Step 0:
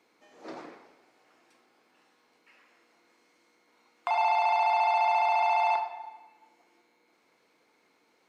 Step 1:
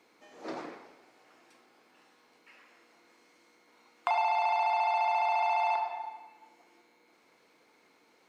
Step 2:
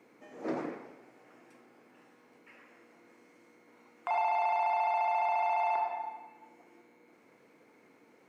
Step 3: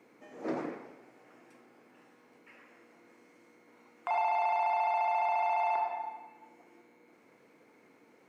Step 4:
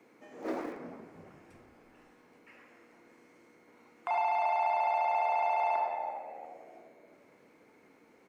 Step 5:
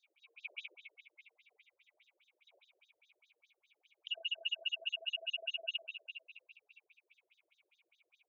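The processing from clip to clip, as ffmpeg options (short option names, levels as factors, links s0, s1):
-af "acompressor=threshold=0.0398:ratio=6,volume=1.41"
-af "equalizer=f=125:t=o:w=1:g=10,equalizer=f=250:t=o:w=1:g=7,equalizer=f=500:t=o:w=1:g=5,equalizer=f=2000:t=o:w=1:g=4,equalizer=f=4000:t=o:w=1:g=-8,alimiter=limit=0.0944:level=0:latency=1:release=84,volume=0.841"
-af anull
-filter_complex "[0:a]acrossover=split=190|2000[s0][s1][s2];[s0]aeval=exprs='(mod(562*val(0)+1,2)-1)/562':c=same[s3];[s1]asplit=5[s4][s5][s6][s7][s8];[s5]adelay=346,afreqshift=-76,volume=0.282[s9];[s6]adelay=692,afreqshift=-152,volume=0.112[s10];[s7]adelay=1038,afreqshift=-228,volume=0.0452[s11];[s8]adelay=1384,afreqshift=-304,volume=0.018[s12];[s4][s9][s10][s11][s12]amix=inputs=5:normalize=0[s13];[s3][s13][s2]amix=inputs=3:normalize=0"
-af "afftfilt=real='real(if(lt(b,920),b+92*(1-2*mod(floor(b/92),2)),b),0)':imag='imag(if(lt(b,920),b+92*(1-2*mod(floor(b/92),2)),b),0)':win_size=2048:overlap=0.75,afftfilt=real='re*between(b*sr/1024,440*pow(5200/440,0.5+0.5*sin(2*PI*4.9*pts/sr))/1.41,440*pow(5200/440,0.5+0.5*sin(2*PI*4.9*pts/sr))*1.41)':imag='im*between(b*sr/1024,440*pow(5200/440,0.5+0.5*sin(2*PI*4.9*pts/sr))/1.41,440*pow(5200/440,0.5+0.5*sin(2*PI*4.9*pts/sr))*1.41)':win_size=1024:overlap=0.75,volume=0.631"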